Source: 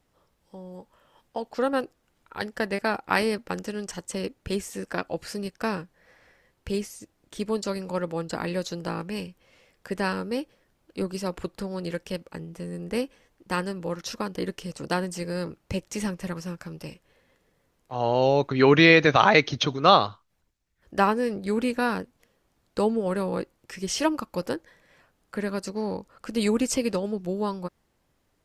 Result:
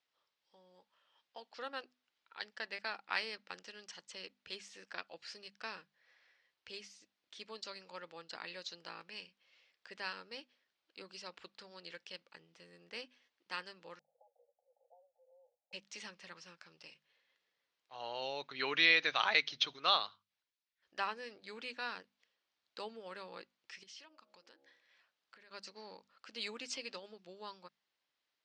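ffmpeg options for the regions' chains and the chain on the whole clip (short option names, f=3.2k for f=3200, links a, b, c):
-filter_complex "[0:a]asettb=1/sr,asplit=3[a][b][c];[a]atrim=end=13.994[d];[b]atrim=start=13.99:end=15.73,asetpts=PTS-STARTPTS,afade=t=in:d=0.004:c=qsin,afade=t=out:st=1.736:d=0.004:c=qsin,acompressor=threshold=-41dB:ratio=2.5:attack=3.2:release=140:knee=1:detection=peak,asuperpass=centerf=640:order=20:qfactor=1.7[e];[c]atrim=start=15.726[f];[d][e]acrossfade=d=0.004:c1=hsin:c2=qsin[g];[g][f]acrossfade=d=0.004:c1=qsin:c2=hsin,asettb=1/sr,asplit=3[h][i][j];[h]atrim=end=23.834[k];[i]atrim=start=23.83:end=25.51,asetpts=PTS-STARTPTS,afade=t=in:d=0.004:c=qsin,afade=t=out:st=1.676:d=0.004:c=qsin,bandreject=f=69.57:t=h:w=4,bandreject=f=139.14:t=h:w=4,bandreject=f=208.71:t=h:w=4,bandreject=f=278.28:t=h:w=4,bandreject=f=347.85:t=h:w=4,bandreject=f=417.42:t=h:w=4,bandreject=f=486.99:t=h:w=4,bandreject=f=556.56:t=h:w=4,bandreject=f=626.13:t=h:w=4,bandreject=f=695.7:t=h:w=4,bandreject=f=765.27:t=h:w=4,bandreject=f=834.84:t=h:w=4,acompressor=threshold=-41dB:ratio=5:attack=3.2:release=140:knee=1:detection=peak[l];[j]atrim=start=25.506[m];[k][l]acrossfade=d=0.004:c1=hsin:c2=qsin[n];[n][m]acrossfade=d=0.004:c1=qsin:c2=hsin,lowpass=f=4.4k:w=0.5412,lowpass=f=4.4k:w=1.3066,aderivative,bandreject=f=50:t=h:w=6,bandreject=f=100:t=h:w=6,bandreject=f=150:t=h:w=6,bandreject=f=200:t=h:w=6,bandreject=f=250:t=h:w=6,volume=1dB"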